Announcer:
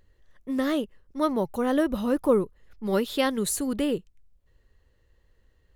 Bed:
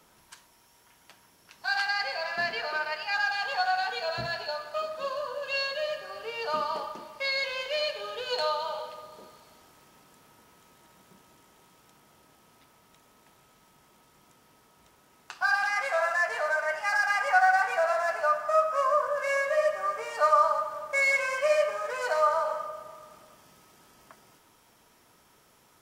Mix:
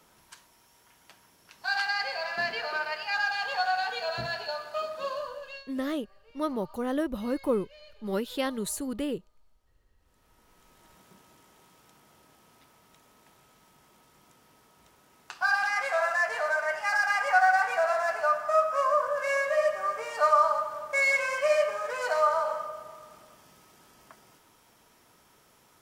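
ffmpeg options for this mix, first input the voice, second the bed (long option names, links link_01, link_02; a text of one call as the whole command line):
ffmpeg -i stem1.wav -i stem2.wav -filter_complex "[0:a]adelay=5200,volume=-5.5dB[link_01];[1:a]volume=23dB,afade=type=out:start_time=5.15:duration=0.49:silence=0.0707946,afade=type=in:start_time=9.98:duration=0.95:silence=0.0668344[link_02];[link_01][link_02]amix=inputs=2:normalize=0" out.wav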